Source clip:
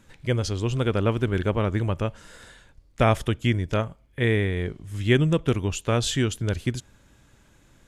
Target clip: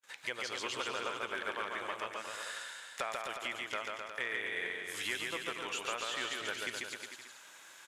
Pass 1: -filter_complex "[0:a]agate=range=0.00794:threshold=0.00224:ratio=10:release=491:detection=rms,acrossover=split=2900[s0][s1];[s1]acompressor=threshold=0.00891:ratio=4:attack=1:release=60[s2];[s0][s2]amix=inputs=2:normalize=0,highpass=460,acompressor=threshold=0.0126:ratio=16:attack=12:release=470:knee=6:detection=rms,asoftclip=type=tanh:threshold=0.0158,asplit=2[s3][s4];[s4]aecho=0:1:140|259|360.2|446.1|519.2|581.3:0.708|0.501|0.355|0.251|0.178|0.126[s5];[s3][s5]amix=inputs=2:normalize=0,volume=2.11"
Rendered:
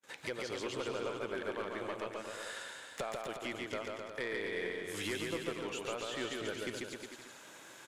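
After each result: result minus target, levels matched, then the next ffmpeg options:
500 Hz band +6.5 dB; saturation: distortion +8 dB
-filter_complex "[0:a]agate=range=0.00794:threshold=0.00224:ratio=10:release=491:detection=rms,acrossover=split=2900[s0][s1];[s1]acompressor=threshold=0.00891:ratio=4:attack=1:release=60[s2];[s0][s2]amix=inputs=2:normalize=0,highpass=1000,acompressor=threshold=0.0126:ratio=16:attack=12:release=470:knee=6:detection=rms,asoftclip=type=tanh:threshold=0.0158,asplit=2[s3][s4];[s4]aecho=0:1:140|259|360.2|446.1|519.2|581.3:0.708|0.501|0.355|0.251|0.178|0.126[s5];[s3][s5]amix=inputs=2:normalize=0,volume=2.11"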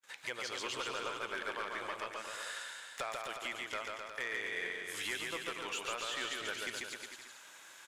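saturation: distortion +9 dB
-filter_complex "[0:a]agate=range=0.00794:threshold=0.00224:ratio=10:release=491:detection=rms,acrossover=split=2900[s0][s1];[s1]acompressor=threshold=0.00891:ratio=4:attack=1:release=60[s2];[s0][s2]amix=inputs=2:normalize=0,highpass=1000,acompressor=threshold=0.0126:ratio=16:attack=12:release=470:knee=6:detection=rms,asoftclip=type=tanh:threshold=0.0376,asplit=2[s3][s4];[s4]aecho=0:1:140|259|360.2|446.1|519.2|581.3:0.708|0.501|0.355|0.251|0.178|0.126[s5];[s3][s5]amix=inputs=2:normalize=0,volume=2.11"

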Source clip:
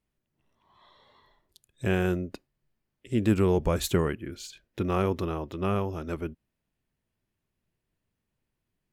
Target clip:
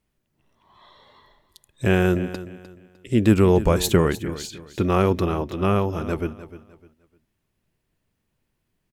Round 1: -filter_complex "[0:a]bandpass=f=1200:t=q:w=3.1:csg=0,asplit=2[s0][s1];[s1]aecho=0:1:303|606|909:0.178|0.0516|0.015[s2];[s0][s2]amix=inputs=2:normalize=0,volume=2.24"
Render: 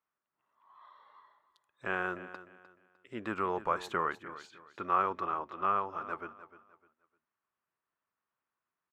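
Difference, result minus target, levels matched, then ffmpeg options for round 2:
1 kHz band +10.0 dB
-filter_complex "[0:a]asplit=2[s0][s1];[s1]aecho=0:1:303|606|909:0.178|0.0516|0.015[s2];[s0][s2]amix=inputs=2:normalize=0,volume=2.24"

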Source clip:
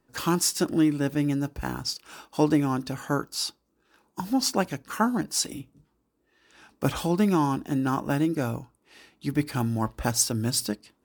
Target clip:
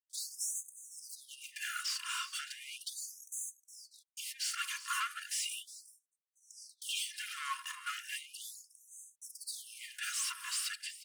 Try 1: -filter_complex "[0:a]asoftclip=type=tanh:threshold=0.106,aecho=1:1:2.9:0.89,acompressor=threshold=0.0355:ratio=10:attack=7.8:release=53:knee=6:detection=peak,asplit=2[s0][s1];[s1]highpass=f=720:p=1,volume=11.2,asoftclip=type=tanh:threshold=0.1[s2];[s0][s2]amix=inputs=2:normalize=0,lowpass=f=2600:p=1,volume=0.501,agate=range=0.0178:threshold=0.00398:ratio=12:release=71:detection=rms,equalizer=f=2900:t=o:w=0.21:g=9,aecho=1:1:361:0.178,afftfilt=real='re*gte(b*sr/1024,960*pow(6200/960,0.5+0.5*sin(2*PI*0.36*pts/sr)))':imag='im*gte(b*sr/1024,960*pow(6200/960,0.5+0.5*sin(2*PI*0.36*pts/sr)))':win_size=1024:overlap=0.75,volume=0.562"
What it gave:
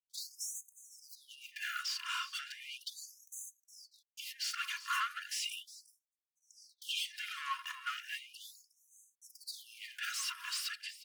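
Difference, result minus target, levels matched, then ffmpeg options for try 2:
8 kHz band -4.5 dB; saturation: distortion -6 dB
-filter_complex "[0:a]asoftclip=type=tanh:threshold=0.0501,aecho=1:1:2.9:0.89,acompressor=threshold=0.0355:ratio=10:attack=7.8:release=53:knee=6:detection=peak,equalizer=f=8900:t=o:w=0.97:g=14.5,asplit=2[s0][s1];[s1]highpass=f=720:p=1,volume=11.2,asoftclip=type=tanh:threshold=0.1[s2];[s0][s2]amix=inputs=2:normalize=0,lowpass=f=2600:p=1,volume=0.501,agate=range=0.0178:threshold=0.00398:ratio=12:release=71:detection=rms,equalizer=f=2900:t=o:w=0.21:g=9,aecho=1:1:361:0.178,afftfilt=real='re*gte(b*sr/1024,960*pow(6200/960,0.5+0.5*sin(2*PI*0.36*pts/sr)))':imag='im*gte(b*sr/1024,960*pow(6200/960,0.5+0.5*sin(2*PI*0.36*pts/sr)))':win_size=1024:overlap=0.75,volume=0.562"

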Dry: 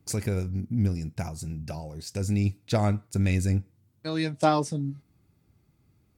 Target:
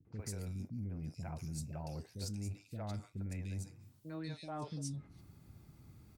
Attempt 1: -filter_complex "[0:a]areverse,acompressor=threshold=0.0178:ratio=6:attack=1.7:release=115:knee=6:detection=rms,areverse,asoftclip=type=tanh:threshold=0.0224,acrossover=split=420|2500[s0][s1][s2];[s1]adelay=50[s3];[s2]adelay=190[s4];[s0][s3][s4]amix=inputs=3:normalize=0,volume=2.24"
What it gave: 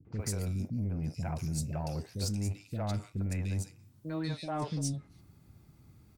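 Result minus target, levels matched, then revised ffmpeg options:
compression: peak gain reduction -9.5 dB
-filter_complex "[0:a]areverse,acompressor=threshold=0.00473:ratio=6:attack=1.7:release=115:knee=6:detection=rms,areverse,asoftclip=type=tanh:threshold=0.0224,acrossover=split=420|2500[s0][s1][s2];[s1]adelay=50[s3];[s2]adelay=190[s4];[s0][s3][s4]amix=inputs=3:normalize=0,volume=2.24"

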